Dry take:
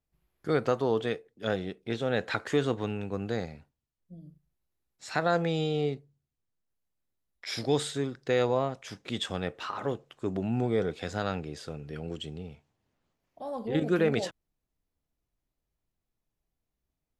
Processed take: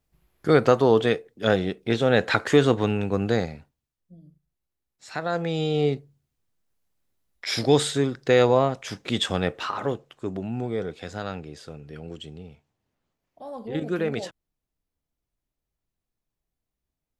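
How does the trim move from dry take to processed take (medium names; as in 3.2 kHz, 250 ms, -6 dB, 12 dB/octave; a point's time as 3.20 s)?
3.34 s +9 dB
4.18 s -2 dB
5.23 s -2 dB
5.93 s +8 dB
9.51 s +8 dB
10.52 s -1 dB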